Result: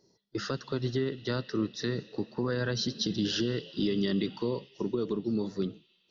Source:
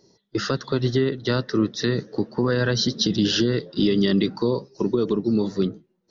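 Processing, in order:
on a send: four-pole ladder band-pass 3,000 Hz, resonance 70% + convolution reverb RT60 3.5 s, pre-delay 25 ms, DRR 13 dB
on the sum: level −9 dB

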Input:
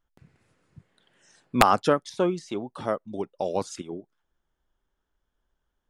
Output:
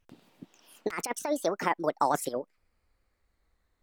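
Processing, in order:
gliding playback speed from 186% → 122%
compressor whose output falls as the input rises −26 dBFS, ratio −0.5

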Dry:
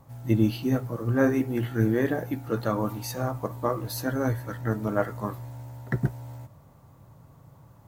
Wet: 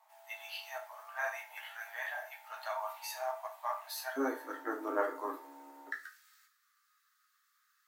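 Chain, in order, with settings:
Chebyshev high-pass with heavy ripple 630 Hz, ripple 6 dB, from 0:04.16 270 Hz, from 0:05.90 1,200 Hz
convolution reverb RT60 0.35 s, pre-delay 5 ms, DRR 0.5 dB
level −3.5 dB

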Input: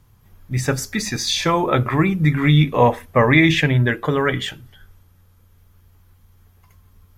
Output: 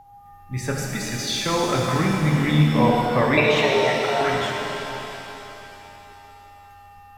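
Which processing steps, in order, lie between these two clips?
0:03.37–0:04.21: frequency shifter +280 Hz
steady tone 810 Hz −37 dBFS
reverb with rising layers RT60 3.3 s, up +7 semitones, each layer −8 dB, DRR −1 dB
level −7 dB

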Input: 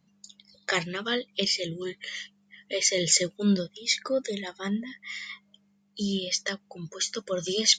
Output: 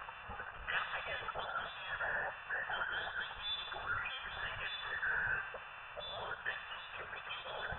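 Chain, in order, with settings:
spike at every zero crossing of −15 dBFS
high-pass filter 1,100 Hz 6 dB per octave
brickwall limiter −16.5 dBFS, peak gain reduction 9.5 dB
phaser with its sweep stopped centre 2,300 Hz, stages 8
bucket-brigade delay 74 ms, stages 1,024, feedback 62%, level −8.5 dB
voice inversion scrambler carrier 3,700 Hz

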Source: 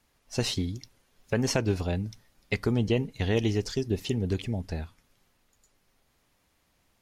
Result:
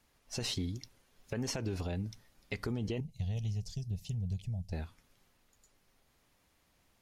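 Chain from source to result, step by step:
0:03.00–0:04.73: drawn EQ curve 170 Hz 0 dB, 310 Hz −29 dB, 680 Hz −10 dB, 1,400 Hz −29 dB, 2,500 Hz −15 dB, 5,900 Hz −7 dB
brickwall limiter −21.5 dBFS, peak gain reduction 10 dB
downward compressor 1.5 to 1, threshold −36 dBFS, peak gain reduction 4 dB
level −1.5 dB

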